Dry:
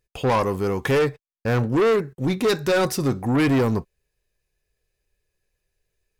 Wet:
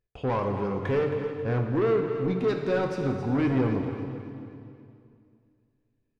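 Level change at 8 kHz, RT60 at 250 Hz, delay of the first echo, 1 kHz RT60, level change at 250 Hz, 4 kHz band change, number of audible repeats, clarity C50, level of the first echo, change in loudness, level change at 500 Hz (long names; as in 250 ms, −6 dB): below −20 dB, 2.7 s, 270 ms, 2.4 s, −4.5 dB, −14.0 dB, 4, 4.0 dB, −11.0 dB, −5.5 dB, −4.5 dB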